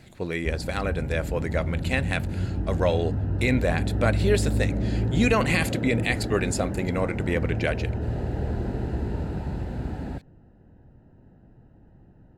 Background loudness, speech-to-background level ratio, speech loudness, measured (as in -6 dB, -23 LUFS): -29.0 LUFS, 2.0 dB, -27.0 LUFS